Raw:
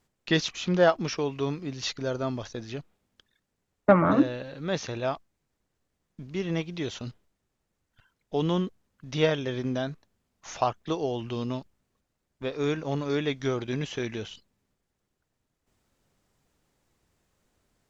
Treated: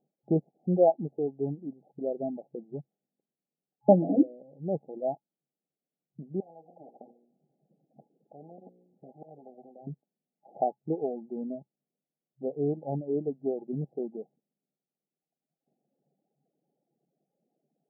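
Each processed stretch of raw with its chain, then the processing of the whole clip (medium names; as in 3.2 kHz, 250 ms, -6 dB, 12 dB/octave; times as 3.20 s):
6.40–9.87 s: hum notches 60/120/180/240/300/360/420/480/540 Hz + slow attack 253 ms + spectrum-flattening compressor 10:1
whole clip: FFT band-pass 130–840 Hz; reverb removal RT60 1.7 s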